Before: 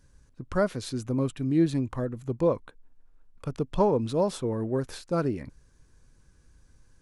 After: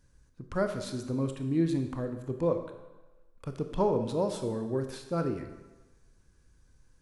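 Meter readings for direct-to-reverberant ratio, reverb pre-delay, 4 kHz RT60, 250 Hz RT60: 6.5 dB, 24 ms, 1.0 s, 1.0 s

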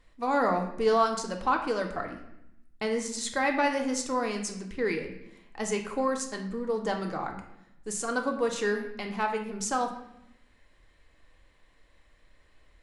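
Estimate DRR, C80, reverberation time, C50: 3.0 dB, 10.5 dB, 0.80 s, 7.5 dB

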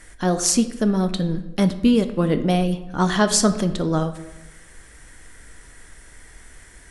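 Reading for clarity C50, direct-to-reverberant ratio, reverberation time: 12.5 dB, 8.5 dB, 1.0 s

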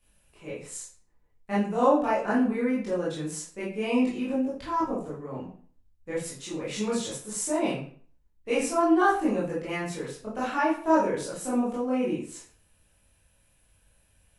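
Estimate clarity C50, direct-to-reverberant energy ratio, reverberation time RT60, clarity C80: 3.5 dB, −9.0 dB, 0.50 s, 9.5 dB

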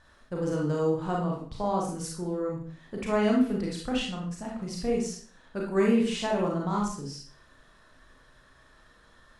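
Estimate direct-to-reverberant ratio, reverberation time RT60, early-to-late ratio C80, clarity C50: −2.5 dB, 0.50 s, 8.0 dB, 3.0 dB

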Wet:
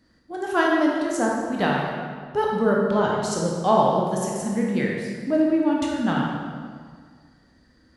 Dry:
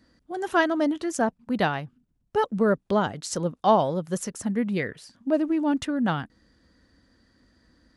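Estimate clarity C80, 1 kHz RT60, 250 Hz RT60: 2.0 dB, 1.8 s, 2.0 s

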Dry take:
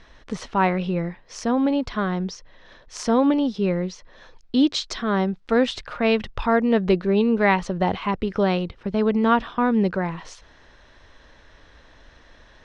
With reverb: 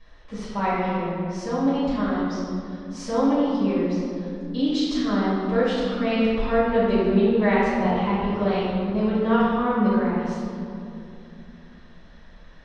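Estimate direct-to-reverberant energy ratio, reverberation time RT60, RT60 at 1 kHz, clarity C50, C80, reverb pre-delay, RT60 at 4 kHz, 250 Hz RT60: −12.5 dB, 2.7 s, 2.4 s, −3.0 dB, −0.5 dB, 4 ms, 1.4 s, 3.7 s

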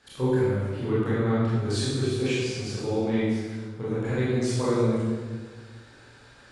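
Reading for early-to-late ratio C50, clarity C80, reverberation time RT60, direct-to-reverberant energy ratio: −3.0 dB, 0.0 dB, 1.5 s, −10.5 dB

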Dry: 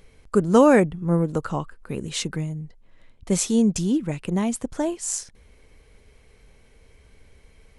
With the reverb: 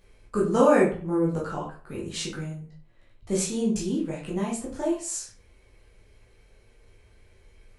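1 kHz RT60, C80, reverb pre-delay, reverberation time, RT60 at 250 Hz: 0.45 s, 11.0 dB, 11 ms, 0.45 s, 0.40 s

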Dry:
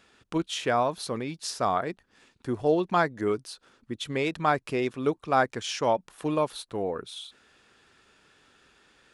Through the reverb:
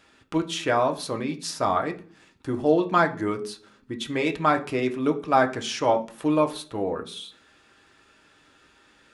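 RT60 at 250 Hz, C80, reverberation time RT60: 0.70 s, 19.0 dB, 0.45 s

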